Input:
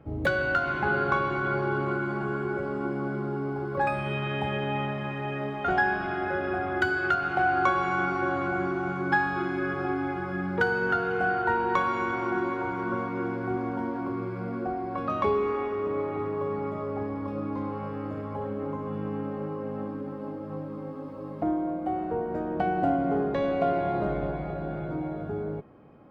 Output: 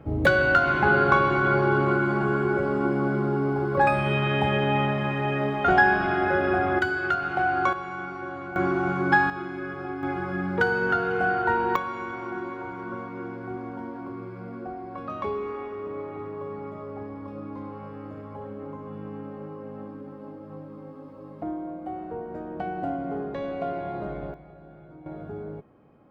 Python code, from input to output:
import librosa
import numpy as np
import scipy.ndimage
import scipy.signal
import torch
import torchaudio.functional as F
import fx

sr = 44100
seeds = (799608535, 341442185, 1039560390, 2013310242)

y = fx.gain(x, sr, db=fx.steps((0.0, 6.0), (6.79, 0.0), (7.73, -7.5), (8.56, 4.5), (9.3, -4.5), (10.03, 2.0), (11.76, -5.0), (24.34, -15.0), (25.06, -4.0)))